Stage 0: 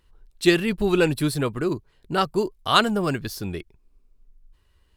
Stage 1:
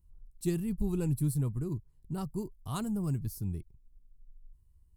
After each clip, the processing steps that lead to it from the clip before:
drawn EQ curve 130 Hz 0 dB, 570 Hz −23 dB, 980 Hz −18 dB, 1,500 Hz −29 dB, 2,400 Hz −27 dB, 3,400 Hz −29 dB, 8,200 Hz −8 dB, 14,000 Hz −5 dB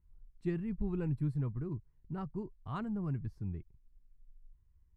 low-pass with resonance 1,900 Hz, resonance Q 1.8
level −4 dB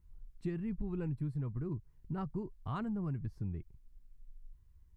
downward compressor 4 to 1, threshold −40 dBFS, peak gain reduction 9.5 dB
level +5 dB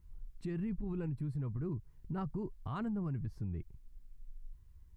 brickwall limiter −35.5 dBFS, peak gain reduction 9 dB
level +4 dB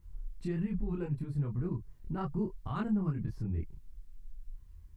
multi-voice chorus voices 4, 1.1 Hz, delay 26 ms, depth 3 ms
level +7 dB

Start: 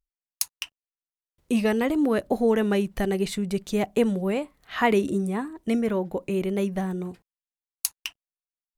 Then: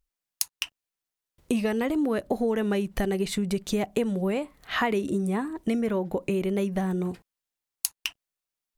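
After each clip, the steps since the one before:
downward compressor 4 to 1, threshold −31 dBFS, peak gain reduction 13 dB
level +6.5 dB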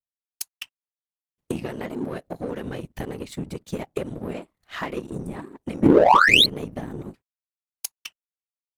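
sound drawn into the spectrogram rise, 0:05.82–0:06.46, 210–4,400 Hz −13 dBFS
random phases in short frames
power curve on the samples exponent 1.4
level +1.5 dB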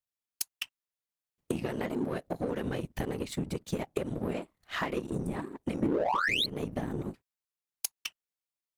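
brickwall limiter −10.5 dBFS, peak gain reduction 9 dB
downward compressor 3 to 1, threshold −28 dBFS, peak gain reduction 10 dB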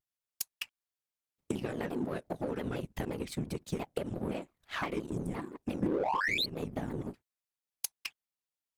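pitch modulation by a square or saw wave saw down 5.8 Hz, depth 250 cents
level −2.5 dB

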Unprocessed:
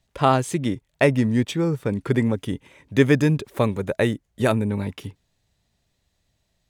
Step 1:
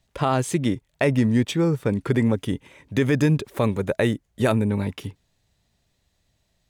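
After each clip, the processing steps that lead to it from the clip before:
brickwall limiter −11.5 dBFS, peak gain reduction 8 dB
level +1.5 dB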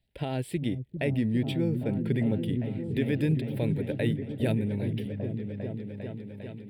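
phaser with its sweep stopped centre 2,800 Hz, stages 4
echo whose low-pass opens from repeat to repeat 401 ms, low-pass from 200 Hz, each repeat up 1 octave, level −3 dB
level −7 dB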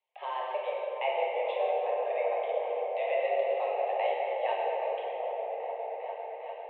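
rectangular room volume 190 cubic metres, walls hard, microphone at 0.78 metres
single-sideband voice off tune +250 Hz 300–2,700 Hz
level −3 dB

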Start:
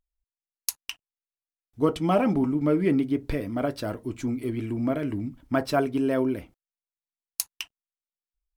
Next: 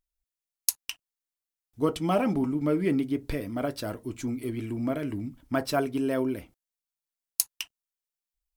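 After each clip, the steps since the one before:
high-shelf EQ 4,300 Hz +7.5 dB
level −3 dB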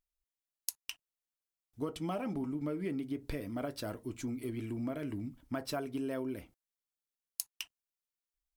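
downward compressor, threshold −28 dBFS, peak gain reduction 10.5 dB
level −5 dB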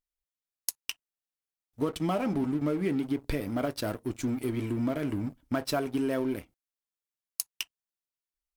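leveller curve on the samples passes 2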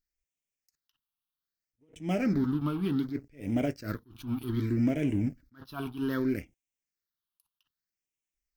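all-pass phaser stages 6, 0.64 Hz, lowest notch 520–1,200 Hz
in parallel at −5 dB: gain into a clipping stage and back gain 24 dB
on the sum: level that may rise only so fast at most 170 dB per second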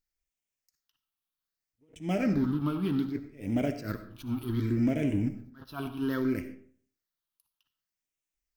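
comb and all-pass reverb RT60 0.54 s, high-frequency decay 0.65×, pre-delay 35 ms, DRR 10 dB

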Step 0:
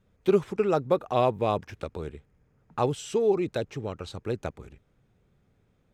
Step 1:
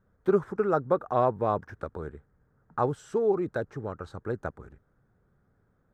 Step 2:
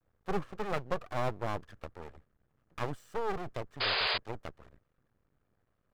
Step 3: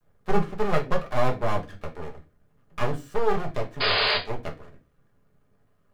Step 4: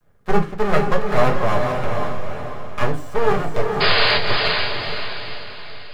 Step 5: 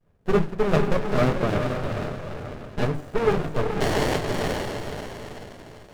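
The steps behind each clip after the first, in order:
high shelf with overshoot 2,000 Hz −9 dB, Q 3; level −2 dB
lower of the sound and its delayed copy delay 1.7 ms; half-wave rectification; sound drawn into the spectrogram noise, 0:03.80–0:04.18, 370–5,000 Hz −28 dBFS; level −2.5 dB
convolution reverb RT60 0.30 s, pre-delay 5 ms, DRR −0.5 dB; level +5 dB
parametric band 1,700 Hz +2.5 dB; feedback delay with all-pass diffusion 471 ms, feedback 44%, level −3.5 dB; level +5 dB
windowed peak hold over 33 samples; level −2 dB

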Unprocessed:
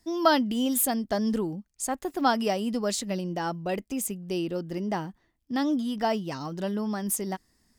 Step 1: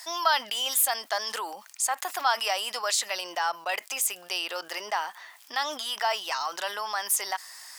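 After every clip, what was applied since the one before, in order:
high-pass filter 840 Hz 24 dB per octave
envelope flattener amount 50%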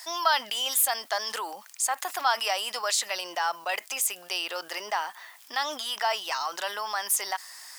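background noise blue −59 dBFS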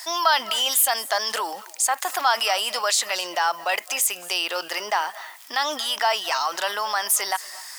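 convolution reverb, pre-delay 187 ms, DRR 19 dB
in parallel at −2.5 dB: brickwall limiter −19 dBFS, peak gain reduction 8.5 dB
on the sum: level +1.5 dB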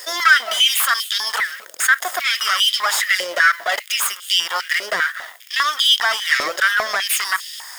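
lower of the sound and its delayed copy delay 0.6 ms
leveller curve on the samples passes 2
high-pass on a step sequencer 5 Hz 540–3,200 Hz
level −3.5 dB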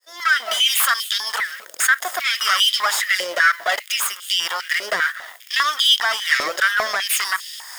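fade in at the beginning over 0.57 s
amplitude modulation by smooth noise, depth 55%
level +2.5 dB

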